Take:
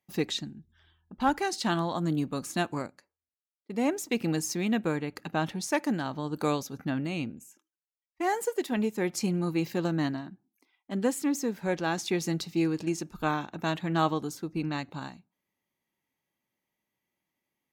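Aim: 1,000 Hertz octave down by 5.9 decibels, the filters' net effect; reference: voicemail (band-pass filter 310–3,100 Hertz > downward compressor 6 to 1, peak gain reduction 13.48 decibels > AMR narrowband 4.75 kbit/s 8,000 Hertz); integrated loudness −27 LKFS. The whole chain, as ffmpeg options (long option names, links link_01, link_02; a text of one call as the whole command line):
ffmpeg -i in.wav -af "highpass=310,lowpass=3100,equalizer=frequency=1000:width_type=o:gain=-8,acompressor=threshold=-38dB:ratio=6,volume=17.5dB" -ar 8000 -c:a libopencore_amrnb -b:a 4750 out.amr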